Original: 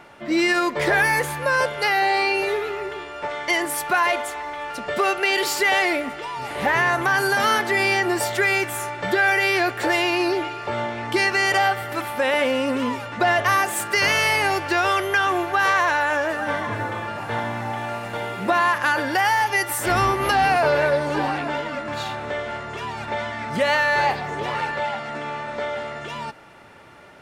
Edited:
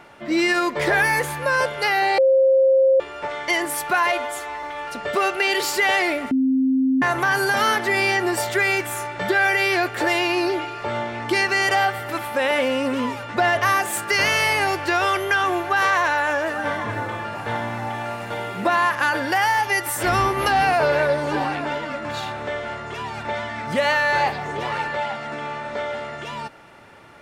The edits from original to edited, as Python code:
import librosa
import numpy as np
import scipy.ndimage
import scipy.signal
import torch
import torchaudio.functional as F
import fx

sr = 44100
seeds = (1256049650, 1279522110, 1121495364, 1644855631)

y = fx.edit(x, sr, fx.bleep(start_s=2.18, length_s=0.82, hz=532.0, db=-12.0),
    fx.stretch_span(start_s=4.12, length_s=0.34, factor=1.5),
    fx.bleep(start_s=6.14, length_s=0.71, hz=263.0, db=-15.5), tone=tone)